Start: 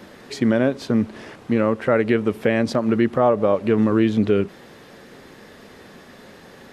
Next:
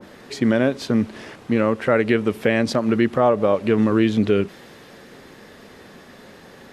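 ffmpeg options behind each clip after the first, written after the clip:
ffmpeg -i in.wav -af "adynamicequalizer=threshold=0.02:dfrequency=1700:dqfactor=0.7:tfrequency=1700:tqfactor=0.7:attack=5:release=100:ratio=0.375:range=2:mode=boostabove:tftype=highshelf" out.wav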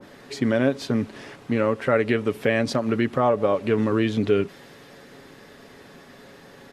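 ffmpeg -i in.wav -af "aecho=1:1:7.2:0.32,volume=-3dB" out.wav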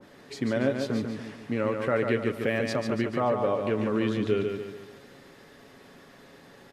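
ffmpeg -i in.wav -af "aecho=1:1:144|288|432|576|720|864:0.531|0.244|0.112|0.0517|0.0238|0.0109,volume=-6dB" out.wav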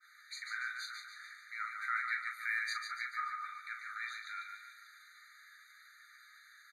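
ffmpeg -i in.wav -filter_complex "[0:a]flanger=delay=6.5:depth=7.4:regen=50:speed=1.7:shape=triangular,asplit=2[link_01][link_02];[link_02]adelay=39,volume=-8dB[link_03];[link_01][link_03]amix=inputs=2:normalize=0,afftfilt=real='re*eq(mod(floor(b*sr/1024/1200),2),1)':imag='im*eq(mod(floor(b*sr/1024/1200),2),1)':win_size=1024:overlap=0.75,volume=2.5dB" out.wav

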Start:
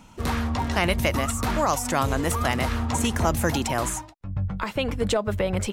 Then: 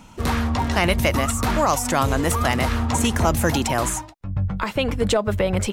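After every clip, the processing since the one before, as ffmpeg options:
ffmpeg -i in.wav -af "acontrast=51,volume=-2dB" out.wav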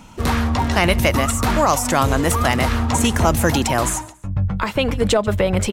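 ffmpeg -i in.wav -af "aecho=1:1:140|280:0.0794|0.0278,volume=3dB" out.wav

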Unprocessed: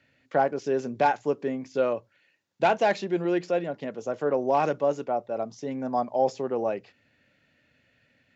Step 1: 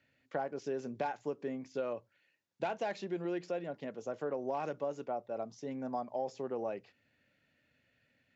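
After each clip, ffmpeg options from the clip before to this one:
ffmpeg -i in.wav -af "acompressor=threshold=-24dB:ratio=6,volume=-8dB" out.wav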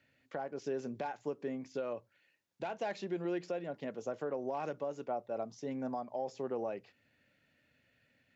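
ffmpeg -i in.wav -af "alimiter=level_in=4.5dB:limit=-24dB:level=0:latency=1:release=386,volume=-4.5dB,volume=1.5dB" out.wav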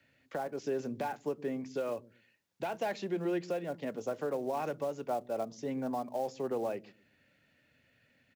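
ffmpeg -i in.wav -filter_complex "[0:a]acrossover=split=330|510|1300[link_01][link_02][link_03][link_04];[link_01]aecho=1:1:120|240|360:0.335|0.0871|0.0226[link_05];[link_03]acrusher=bits=4:mode=log:mix=0:aa=0.000001[link_06];[link_05][link_02][link_06][link_04]amix=inputs=4:normalize=0,volume=3dB" out.wav

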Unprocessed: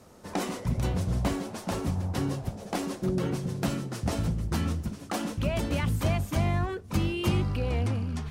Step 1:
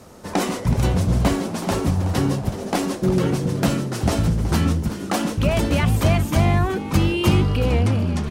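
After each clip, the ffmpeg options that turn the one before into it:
ffmpeg -i in.wav -filter_complex "[0:a]asplit=4[link_01][link_02][link_03][link_04];[link_02]adelay=373,afreqshift=110,volume=-13.5dB[link_05];[link_03]adelay=746,afreqshift=220,volume=-22.9dB[link_06];[link_04]adelay=1119,afreqshift=330,volume=-32.2dB[link_07];[link_01][link_05][link_06][link_07]amix=inputs=4:normalize=0,volume=9dB" out.wav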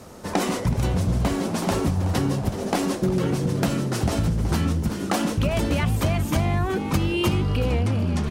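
ffmpeg -i in.wav -af "acompressor=threshold=-20dB:ratio=6,volume=1.5dB" out.wav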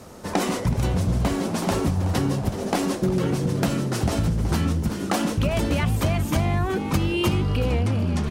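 ffmpeg -i in.wav -af anull out.wav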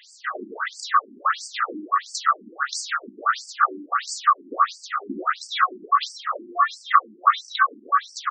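ffmpeg -i in.wav -af "afftfilt=real='real(if(lt(b,960),b+48*(1-2*mod(floor(b/48),2)),b),0)':imag='imag(if(lt(b,960),b+48*(1-2*mod(floor(b/48),2)),b),0)':win_size=2048:overlap=0.75,afftfilt=real='re*between(b*sr/1024,260*pow(6400/260,0.5+0.5*sin(2*PI*1.5*pts/sr))/1.41,260*pow(6400/260,0.5+0.5*sin(2*PI*1.5*pts/sr))*1.41)':imag='im*between(b*sr/1024,260*pow(6400/260,0.5+0.5*sin(2*PI*1.5*pts/sr))/1.41,260*pow(6400/260,0.5+0.5*sin(2*PI*1.5*pts/sr))*1.41)':win_size=1024:overlap=0.75,volume=7.5dB" out.wav

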